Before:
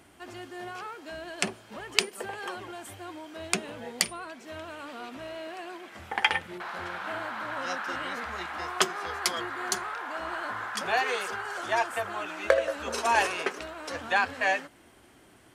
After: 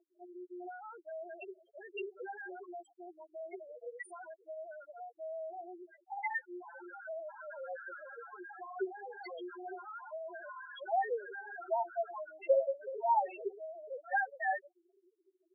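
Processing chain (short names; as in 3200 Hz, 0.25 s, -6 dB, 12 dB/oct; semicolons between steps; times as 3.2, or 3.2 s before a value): high shelf 4100 Hz -7.5 dB; notch comb 1200 Hz; loudest bins only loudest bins 2; brick-wall FIR band-pass 340–11000 Hz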